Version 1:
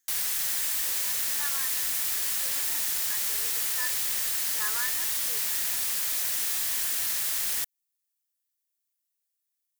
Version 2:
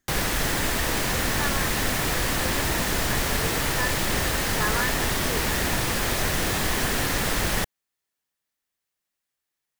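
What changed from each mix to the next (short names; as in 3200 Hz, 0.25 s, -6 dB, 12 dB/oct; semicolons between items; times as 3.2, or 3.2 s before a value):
speech -6.5 dB; master: remove pre-emphasis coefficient 0.97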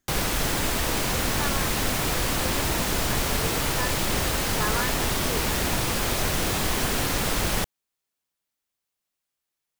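master: add bell 1800 Hz -5.5 dB 0.32 oct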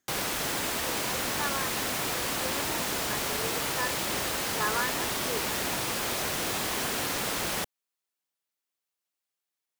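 background -3.5 dB; master: add HPF 290 Hz 6 dB/oct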